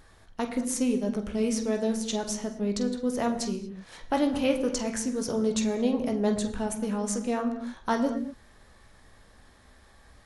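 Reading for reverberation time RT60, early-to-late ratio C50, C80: no single decay rate, 10.0 dB, 11.5 dB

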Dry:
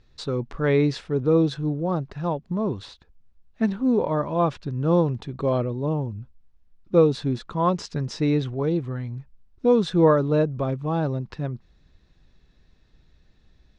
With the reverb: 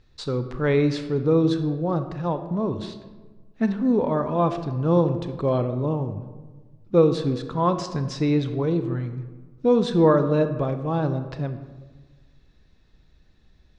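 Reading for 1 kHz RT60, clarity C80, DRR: 1.3 s, 12.0 dB, 9.0 dB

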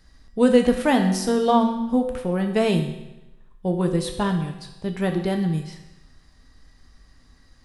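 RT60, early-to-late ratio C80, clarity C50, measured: 0.95 s, 9.5 dB, 7.5 dB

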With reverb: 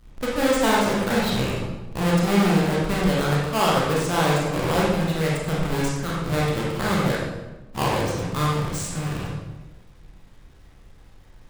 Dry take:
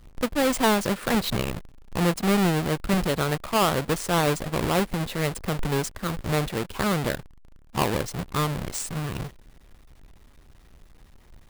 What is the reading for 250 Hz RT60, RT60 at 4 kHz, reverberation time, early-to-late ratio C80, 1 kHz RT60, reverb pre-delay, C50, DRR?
1.3 s, 0.80 s, 1.1 s, 2.5 dB, 1.0 s, 23 ms, -1.0 dB, -5.5 dB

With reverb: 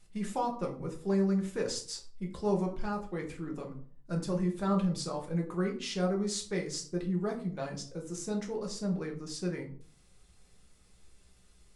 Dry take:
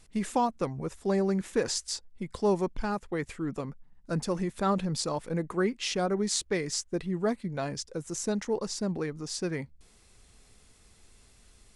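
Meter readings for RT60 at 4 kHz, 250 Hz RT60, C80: 0.30 s, 0.60 s, 14.5 dB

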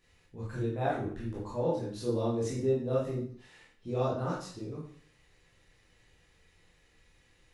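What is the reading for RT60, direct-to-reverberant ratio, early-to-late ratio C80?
0.50 s, -8.0 dB, 7.0 dB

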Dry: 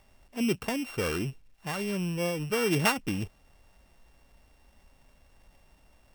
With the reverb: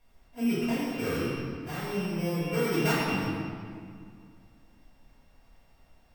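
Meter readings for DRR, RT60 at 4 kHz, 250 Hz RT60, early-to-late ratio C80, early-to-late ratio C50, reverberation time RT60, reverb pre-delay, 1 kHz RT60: -13.0 dB, 1.5 s, 2.7 s, -0.5 dB, -2.5 dB, 2.1 s, 3 ms, 2.1 s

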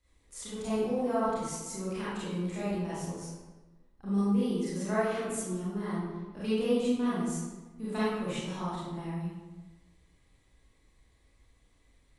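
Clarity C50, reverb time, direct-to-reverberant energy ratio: -4.0 dB, 1.2 s, -11.0 dB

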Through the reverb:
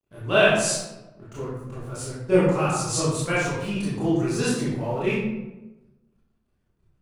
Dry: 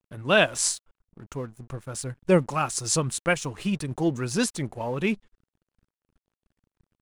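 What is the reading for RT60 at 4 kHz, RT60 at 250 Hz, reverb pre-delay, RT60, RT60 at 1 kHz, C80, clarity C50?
0.60 s, 1.3 s, 21 ms, 1.1 s, 0.95 s, 2.5 dB, -1.5 dB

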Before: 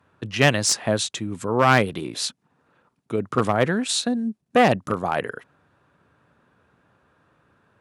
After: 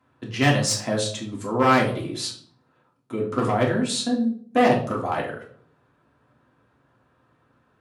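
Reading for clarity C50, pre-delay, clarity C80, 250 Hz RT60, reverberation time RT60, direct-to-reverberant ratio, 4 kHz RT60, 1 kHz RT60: 8.0 dB, 3 ms, 11.5 dB, 0.70 s, 0.55 s, -2.5 dB, 0.40 s, 0.50 s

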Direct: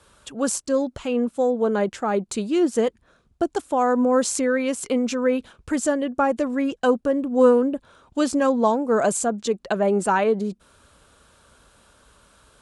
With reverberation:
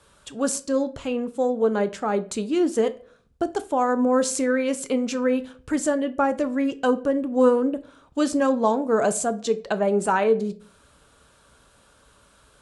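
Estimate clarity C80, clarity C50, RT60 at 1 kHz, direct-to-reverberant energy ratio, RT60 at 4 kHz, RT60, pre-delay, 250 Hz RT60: 22.5 dB, 18.0 dB, 0.35 s, 11.0 dB, 0.35 s, 0.45 s, 5 ms, 0.55 s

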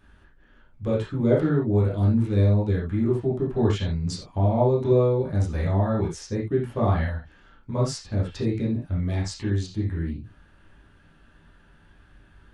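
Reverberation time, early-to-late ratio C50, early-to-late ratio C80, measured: no single decay rate, 4.5 dB, 11.5 dB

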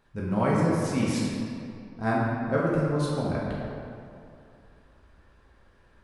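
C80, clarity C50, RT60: 0.5 dB, -1.5 dB, 2.5 s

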